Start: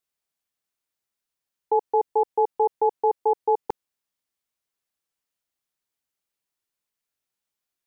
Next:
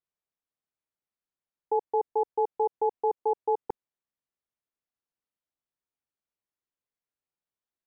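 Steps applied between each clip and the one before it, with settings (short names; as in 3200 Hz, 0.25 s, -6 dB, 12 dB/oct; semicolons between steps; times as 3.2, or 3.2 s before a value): LPF 1200 Hz 6 dB/oct; gain -4 dB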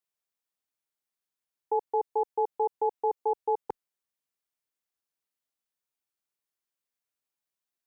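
tilt +1.5 dB/oct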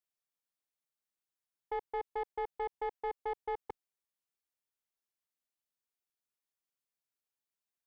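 soft clip -25.5 dBFS, distortion -13 dB; gain -5 dB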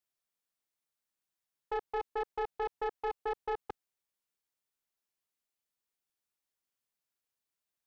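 Doppler distortion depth 0.39 ms; gain +2 dB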